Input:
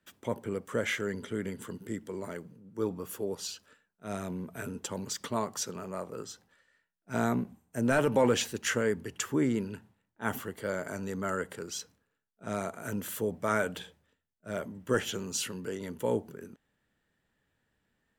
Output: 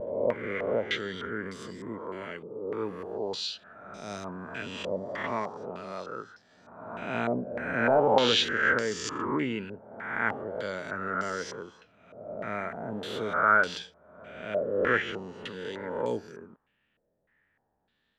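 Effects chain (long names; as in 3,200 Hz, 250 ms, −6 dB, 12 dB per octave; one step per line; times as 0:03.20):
peak hold with a rise ahead of every peak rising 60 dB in 1.11 s
echo ahead of the sound 281 ms −18 dB
pitch vibrato 0.71 Hz 24 cents
low-shelf EQ 240 Hz −4 dB
low-pass on a step sequencer 3.3 Hz 580–5,100 Hz
level −2.5 dB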